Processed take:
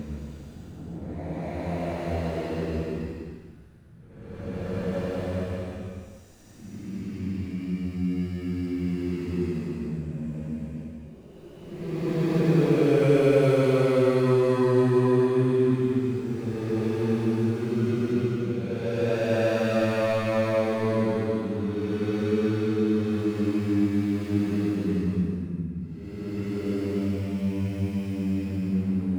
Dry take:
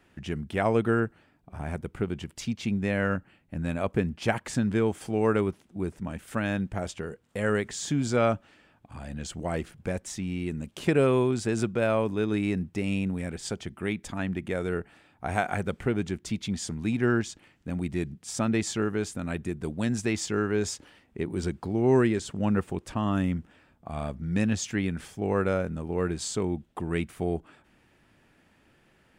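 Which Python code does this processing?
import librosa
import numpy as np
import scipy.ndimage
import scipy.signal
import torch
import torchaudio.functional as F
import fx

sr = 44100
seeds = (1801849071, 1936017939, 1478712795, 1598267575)

y = scipy.ndimage.median_filter(x, 41, mode='constant')
y = fx.paulstretch(y, sr, seeds[0], factor=7.5, window_s=0.25, from_s=9.23)
y = y * 10.0 ** (2.5 / 20.0)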